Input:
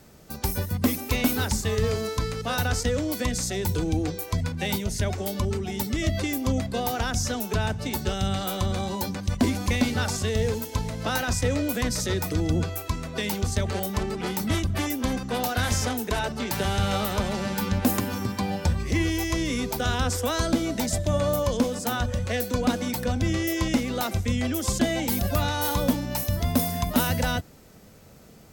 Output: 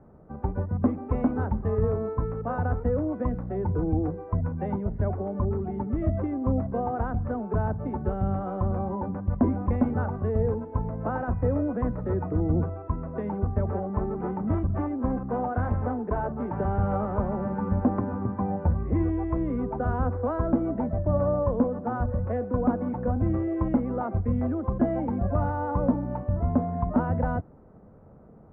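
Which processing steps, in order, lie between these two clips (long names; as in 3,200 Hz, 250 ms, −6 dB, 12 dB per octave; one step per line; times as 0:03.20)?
inverse Chebyshev low-pass filter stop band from 5,100 Hz, stop band 70 dB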